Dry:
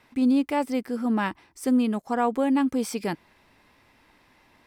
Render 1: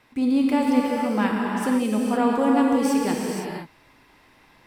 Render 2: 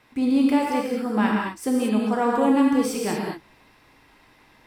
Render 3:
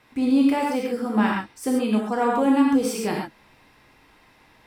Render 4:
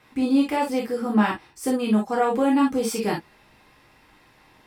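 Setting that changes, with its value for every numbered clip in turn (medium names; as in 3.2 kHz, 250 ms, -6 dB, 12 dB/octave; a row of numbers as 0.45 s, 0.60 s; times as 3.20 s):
gated-style reverb, gate: 540 ms, 260 ms, 160 ms, 80 ms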